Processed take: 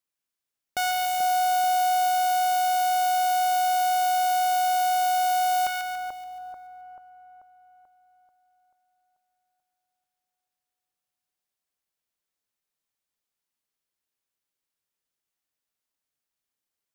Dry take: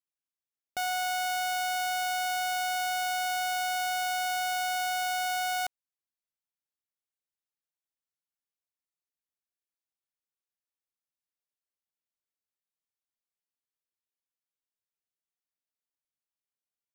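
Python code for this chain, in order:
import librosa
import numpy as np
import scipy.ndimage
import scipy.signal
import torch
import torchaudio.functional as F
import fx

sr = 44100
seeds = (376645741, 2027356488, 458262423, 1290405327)

y = fx.echo_split(x, sr, split_hz=1200.0, low_ms=437, high_ms=143, feedback_pct=52, wet_db=-5)
y = y * librosa.db_to_amplitude(5.5)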